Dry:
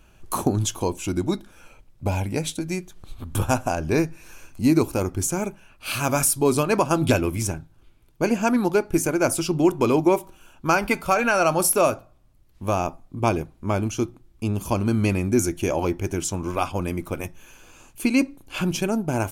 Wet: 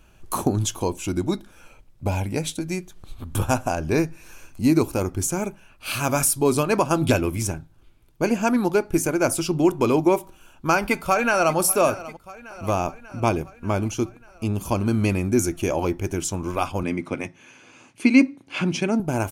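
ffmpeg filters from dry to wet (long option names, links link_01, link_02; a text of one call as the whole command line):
ffmpeg -i in.wav -filter_complex "[0:a]asplit=2[link_01][link_02];[link_02]afade=type=in:start_time=10.73:duration=0.01,afade=type=out:start_time=11.57:duration=0.01,aecho=0:1:590|1180|1770|2360|2950|3540|4130:0.141254|0.0918149|0.0596797|0.0387918|0.0252147|0.0163895|0.0106532[link_03];[link_01][link_03]amix=inputs=2:normalize=0,asettb=1/sr,asplit=3[link_04][link_05][link_06];[link_04]atrim=end=16.834[link_07];[link_05]atrim=start=16.83:end=19,asetpts=PTS-STARTPTS,afade=type=in:duration=0.004:curve=qsin,afade=type=out:start_time=2.166:duration=0.004:curve=qsin,highpass=frequency=110:width=0.5412,highpass=frequency=110:width=1.3066,equalizer=frequency=260:width_type=q:width=4:gain=6,equalizer=frequency=2100:width_type=q:width=4:gain=8,equalizer=frequency=7400:width_type=q:width=4:gain=-7,lowpass=frequency=8300:width=0.5412,lowpass=frequency=8300:width=1.3066[link_08];[link_06]atrim=start=18.996[link_09];[link_07][link_08]acrossfade=duration=0.004:curve1=hsin:curve2=qsin[link_10];[link_10][link_09]acrossfade=duration=0.004:curve1=qsin:curve2=hsin" out.wav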